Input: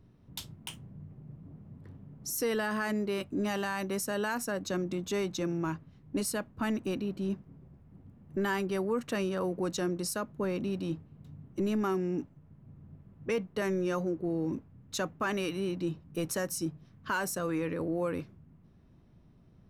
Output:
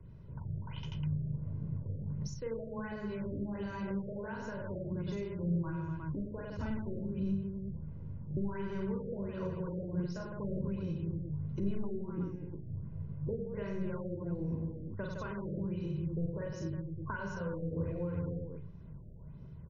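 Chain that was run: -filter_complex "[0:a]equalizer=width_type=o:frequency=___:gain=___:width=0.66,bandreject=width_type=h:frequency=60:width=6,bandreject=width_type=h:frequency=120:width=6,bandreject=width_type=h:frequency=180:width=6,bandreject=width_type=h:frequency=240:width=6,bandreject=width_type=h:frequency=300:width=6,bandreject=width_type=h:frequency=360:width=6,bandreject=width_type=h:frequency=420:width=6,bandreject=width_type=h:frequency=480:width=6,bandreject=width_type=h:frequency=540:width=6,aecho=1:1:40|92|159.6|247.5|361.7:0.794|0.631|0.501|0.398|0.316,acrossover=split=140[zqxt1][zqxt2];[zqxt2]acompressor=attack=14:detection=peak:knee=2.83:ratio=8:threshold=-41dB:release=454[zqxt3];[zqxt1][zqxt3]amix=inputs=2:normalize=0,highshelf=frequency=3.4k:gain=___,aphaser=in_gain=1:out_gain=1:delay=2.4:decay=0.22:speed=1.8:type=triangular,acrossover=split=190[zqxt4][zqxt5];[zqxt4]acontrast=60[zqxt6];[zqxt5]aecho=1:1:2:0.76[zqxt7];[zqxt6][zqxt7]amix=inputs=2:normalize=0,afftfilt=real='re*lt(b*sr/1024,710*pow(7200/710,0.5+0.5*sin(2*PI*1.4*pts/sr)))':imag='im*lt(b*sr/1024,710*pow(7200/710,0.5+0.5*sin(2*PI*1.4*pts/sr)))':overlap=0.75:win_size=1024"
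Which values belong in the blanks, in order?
150, 3, -9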